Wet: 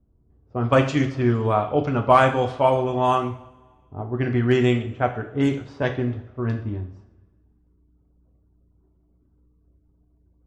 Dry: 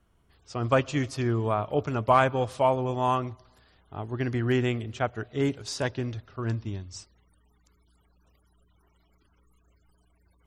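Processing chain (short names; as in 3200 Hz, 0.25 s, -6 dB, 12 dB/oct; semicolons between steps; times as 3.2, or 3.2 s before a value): low-pass opened by the level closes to 370 Hz, open at -20 dBFS; two-slope reverb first 0.48 s, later 1.6 s, from -18 dB, DRR 4 dB; gain +4 dB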